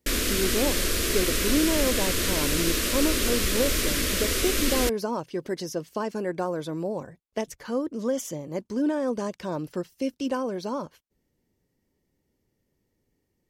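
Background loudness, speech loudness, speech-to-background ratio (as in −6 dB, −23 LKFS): −25.0 LKFS, −30.0 LKFS, −5.0 dB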